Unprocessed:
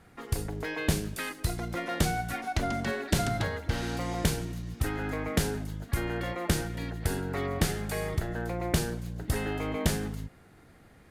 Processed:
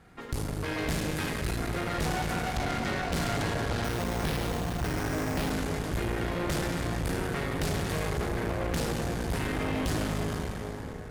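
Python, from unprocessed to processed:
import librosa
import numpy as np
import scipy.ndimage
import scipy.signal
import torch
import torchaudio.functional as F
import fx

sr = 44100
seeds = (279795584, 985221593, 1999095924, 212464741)

y = fx.high_shelf(x, sr, hz=8700.0, db=-7.0)
y = fx.echo_multitap(y, sr, ms=(84, 465), db=(-11.0, -16.5))
y = fx.rev_plate(y, sr, seeds[0], rt60_s=4.7, hf_ratio=0.6, predelay_ms=0, drr_db=-0.5)
y = 10.0 ** (-26.5 / 20.0) * np.tanh(y / 10.0 ** (-26.5 / 20.0))
y = fx.cheby_harmonics(y, sr, harmonics=(6,), levels_db=(-13,), full_scale_db=-17.0)
y = fx.resample_bad(y, sr, factor=6, down='none', up='hold', at=(3.84, 5.51))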